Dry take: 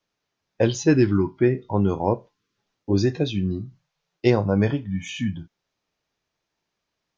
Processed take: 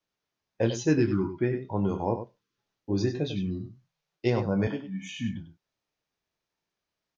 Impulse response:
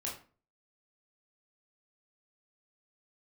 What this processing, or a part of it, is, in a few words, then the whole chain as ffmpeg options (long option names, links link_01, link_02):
slapback doubling: -filter_complex "[0:a]asplit=3[link_01][link_02][link_03];[link_02]adelay=26,volume=-9dB[link_04];[link_03]adelay=98,volume=-9.5dB[link_05];[link_01][link_04][link_05]amix=inputs=3:normalize=0,asettb=1/sr,asplit=3[link_06][link_07][link_08];[link_06]atrim=end=4.674[link_09];[link_07]atrim=start=4.67:end=5.18,asetpts=PTS-STARTPTS,afade=type=in:duration=0.004:curve=qsin,afade=type=out:start_time=0.506:duration=0.004:curve=qsin,highpass=frequency=180:width=0.5412,highpass=frequency=180:width=1.3066[link_10];[link_08]atrim=start=5.176[link_11];[link_09][link_10]acrossfade=duration=0.004:curve1=hsin:curve2=qsin[link_12];[link_12][link_11]acrossfade=duration=0.004:curve1=qsin:curve2=hsin,volume=-7dB"